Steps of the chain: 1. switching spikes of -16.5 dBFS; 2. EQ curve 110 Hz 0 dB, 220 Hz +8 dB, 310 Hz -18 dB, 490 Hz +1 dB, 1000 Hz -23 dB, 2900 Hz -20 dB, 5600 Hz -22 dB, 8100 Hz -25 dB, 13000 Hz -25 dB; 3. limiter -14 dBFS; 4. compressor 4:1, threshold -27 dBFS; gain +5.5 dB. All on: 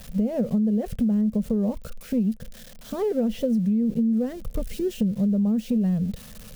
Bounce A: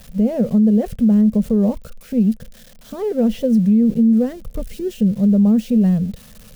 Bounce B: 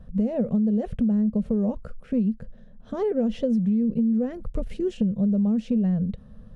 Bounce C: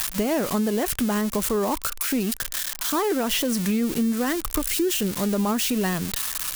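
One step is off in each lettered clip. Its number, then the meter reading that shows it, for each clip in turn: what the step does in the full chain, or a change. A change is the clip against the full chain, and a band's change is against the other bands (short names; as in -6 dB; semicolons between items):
4, crest factor change -3.0 dB; 1, distortion -9 dB; 2, 4 kHz band +16.5 dB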